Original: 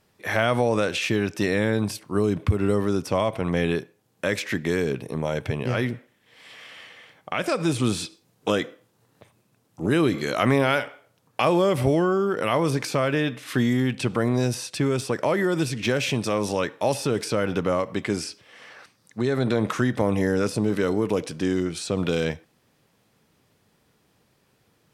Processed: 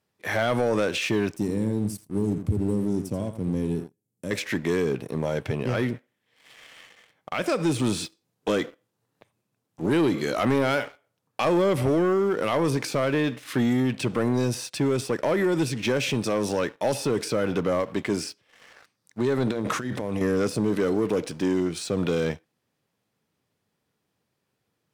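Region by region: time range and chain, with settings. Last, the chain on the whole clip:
1.36–4.31 s: FFT filter 240 Hz 0 dB, 1.4 kHz -22 dB, 3.6 kHz -17 dB, 8 kHz -1 dB + delay 84 ms -10.5 dB
19.51–20.21 s: compressor with a negative ratio -28 dBFS + hum notches 60/120/180/240/300/360/420 Hz
whole clip: high-pass 68 Hz; dynamic bell 330 Hz, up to +3 dB, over -31 dBFS, Q 0.91; waveshaping leveller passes 2; trim -8.5 dB

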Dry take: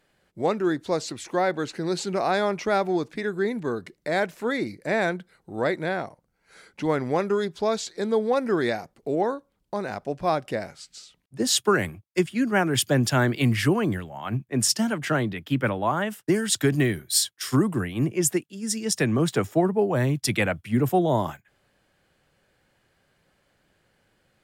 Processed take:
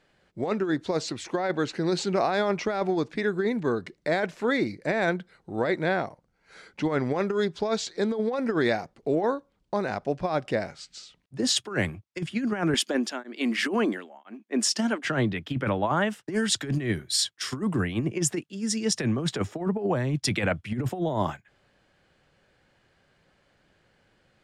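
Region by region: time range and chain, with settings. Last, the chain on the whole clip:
12.74–15.05 s: brick-wall FIR high-pass 200 Hz + tremolo of two beating tones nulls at 1 Hz
whole clip: low-pass 6.5 kHz 12 dB/octave; compressor with a negative ratio -24 dBFS, ratio -0.5

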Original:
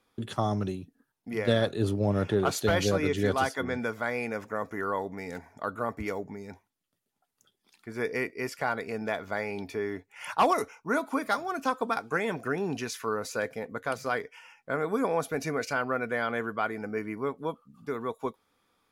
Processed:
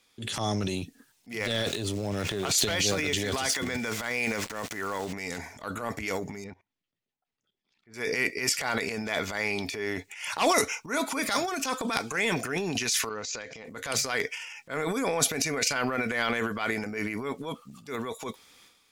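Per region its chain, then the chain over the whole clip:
1.31–5.13 s: compression 2.5:1, threshold -27 dBFS + small samples zeroed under -49 dBFS
6.44–7.94 s: level held to a coarse grid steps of 24 dB + tape spacing loss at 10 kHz 33 dB
13.09–13.65 s: elliptic low-pass 6.9 kHz + compression 8:1, threshold -40 dBFS
whole clip: high-order bell 4 kHz +9.5 dB 2.4 oct; transient shaper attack -8 dB, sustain +10 dB; treble shelf 6.2 kHz +9.5 dB; trim -1 dB

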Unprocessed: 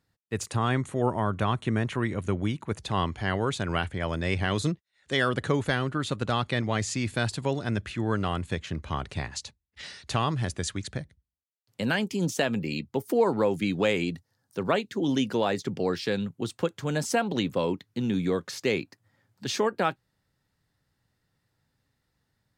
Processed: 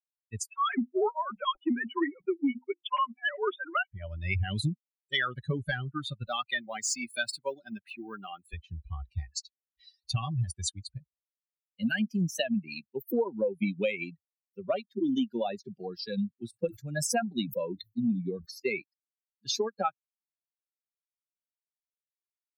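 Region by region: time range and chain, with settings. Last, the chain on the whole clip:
0.49–3.92 s: formants replaced by sine waves + hum notches 50/100/150/200/250/300/350 Hz
6.27–8.54 s: companding laws mixed up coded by mu + high-pass 230 Hz
16.47–18.82 s: band-stop 3.1 kHz, Q 5.8 + decay stretcher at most 100 dB/s
whole clip: expander on every frequency bin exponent 3; dynamic bell 230 Hz, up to +5 dB, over -52 dBFS, Q 5; compression 6:1, threshold -33 dBFS; trim +8 dB

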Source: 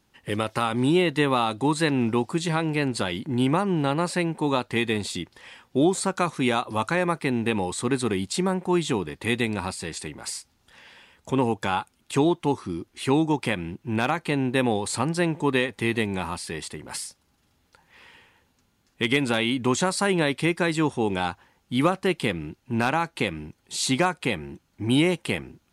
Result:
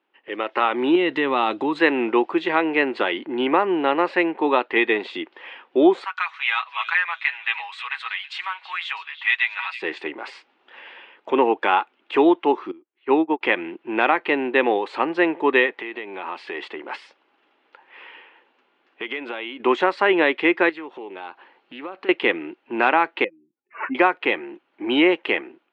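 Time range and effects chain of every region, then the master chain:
0.95–1.79 s: tone controls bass +12 dB, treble +10 dB + compression 5:1, threshold -20 dBFS
6.04–9.82 s: Bessel high-pass 1.7 kHz, order 6 + comb 6.2 ms, depth 64% + repeats whose band climbs or falls 326 ms, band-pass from 3.2 kHz, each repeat 0.7 oct, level -10 dB
12.71–13.41 s: distance through air 180 m + upward expansion 2.5:1, over -38 dBFS
15.71–19.60 s: compression 16:1, threshold -30 dBFS + bass shelf 220 Hz -5 dB
20.69–22.09 s: peaking EQ 4.3 kHz +8.5 dB 0.22 oct + compression 8:1, threshold -36 dBFS + loudspeaker Doppler distortion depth 0.19 ms
23.24–23.95 s: spectral contrast enhancement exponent 2.5 + careless resampling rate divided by 8×, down none, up filtered + upward expansion 2.5:1, over -34 dBFS
whole clip: Chebyshev band-pass 330–2900 Hz, order 3; dynamic bell 1.9 kHz, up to +5 dB, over -47 dBFS, Q 6.4; level rider gain up to 11.5 dB; trim -2.5 dB

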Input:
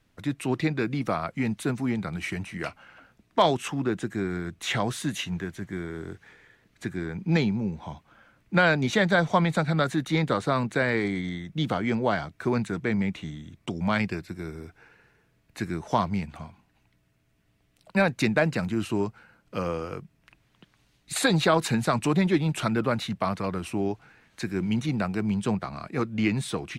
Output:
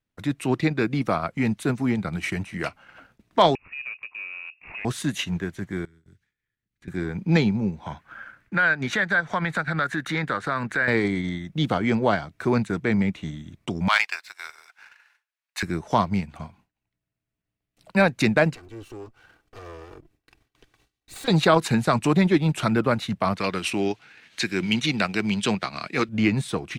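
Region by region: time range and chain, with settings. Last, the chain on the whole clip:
3.55–4.85 s: median filter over 41 samples + frequency inversion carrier 2.7 kHz + compression 2:1, threshold -44 dBFS
5.85–6.88 s: amplifier tone stack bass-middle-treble 6-0-2 + three bands compressed up and down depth 70%
7.86–10.88 s: peaking EQ 1.6 kHz +14.5 dB 0.86 oct + compression 2:1, threshold -32 dBFS
13.88–15.63 s: high-pass 890 Hz 24 dB/octave + peaking EQ 4 kHz +5 dB 2.3 oct + waveshaping leveller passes 1
18.55–21.28 s: comb filter that takes the minimum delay 2.6 ms + compression 2:1, threshold -52 dBFS
23.38–26.09 s: frequency weighting D + hard clipper -12.5 dBFS
whole clip: transient shaper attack -2 dB, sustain -6 dB; gate with hold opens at -53 dBFS; trim +4.5 dB

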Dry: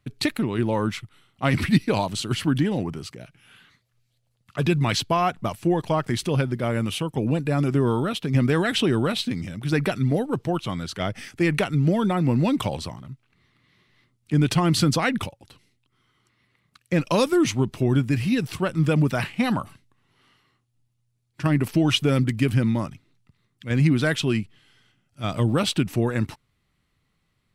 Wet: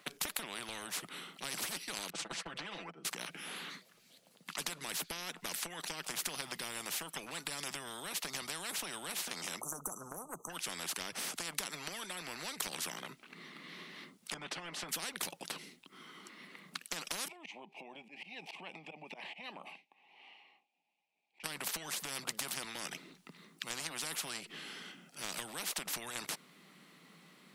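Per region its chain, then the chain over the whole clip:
2.10–3.05 s: gate -29 dBFS, range -28 dB + tape spacing loss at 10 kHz 23 dB + comb 6 ms, depth 84%
9.61–10.50 s: brick-wall FIR band-stop 1.3–5.9 kHz + loudspeaker Doppler distortion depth 0.1 ms
14.34–14.89 s: band-pass filter 290 Hz, Q 0.5 + comb of notches 230 Hz
17.28–21.44 s: compression 10:1, threshold -33 dBFS + two resonant band-passes 1.4 kHz, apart 1.6 oct + slow attack 116 ms
whole clip: elliptic high-pass 170 Hz, stop band 40 dB; compression, threshold -28 dBFS; spectrum-flattening compressor 10:1; trim +1 dB

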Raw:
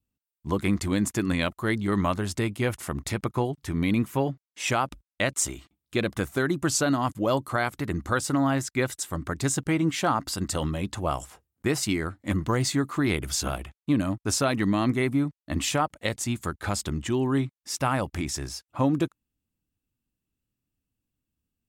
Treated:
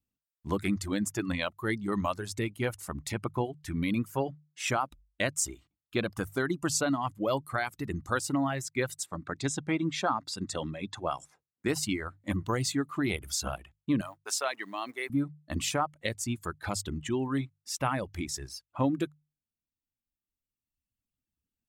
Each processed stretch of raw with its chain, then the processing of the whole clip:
9.06–11.68 s: band-stop 3 kHz, Q 6.4 + dynamic bell 3.3 kHz, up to +6 dB, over -52 dBFS, Q 3.2 + band-pass 120–6900 Hz
14.01–15.10 s: companding laws mixed up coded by A + high-pass 590 Hz
whole clip: reverb removal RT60 1.8 s; hum notches 50/100/150 Hz; trim -3.5 dB

